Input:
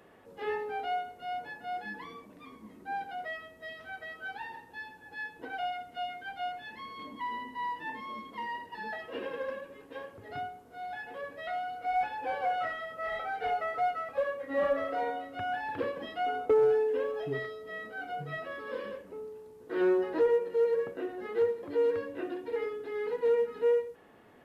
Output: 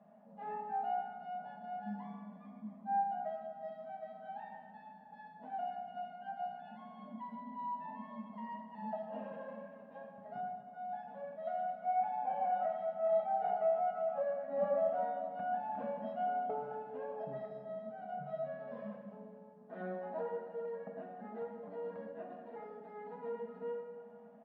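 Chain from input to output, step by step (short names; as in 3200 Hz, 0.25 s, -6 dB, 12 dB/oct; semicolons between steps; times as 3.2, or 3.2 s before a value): double band-pass 380 Hz, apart 1.7 oct; comb 4.9 ms, depth 66%; plate-style reverb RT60 2 s, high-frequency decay 0.85×, DRR 2.5 dB; gain +4 dB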